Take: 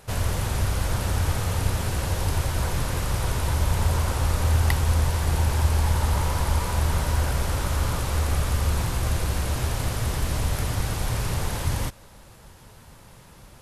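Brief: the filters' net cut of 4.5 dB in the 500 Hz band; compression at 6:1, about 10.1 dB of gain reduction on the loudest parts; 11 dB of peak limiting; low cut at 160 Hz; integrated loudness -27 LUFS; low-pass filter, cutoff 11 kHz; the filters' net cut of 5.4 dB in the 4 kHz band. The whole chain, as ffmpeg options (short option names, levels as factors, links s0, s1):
-af "highpass=160,lowpass=11000,equalizer=f=500:t=o:g=-5.5,equalizer=f=4000:t=o:g=-7,acompressor=threshold=0.0158:ratio=6,volume=4.73,alimiter=limit=0.133:level=0:latency=1"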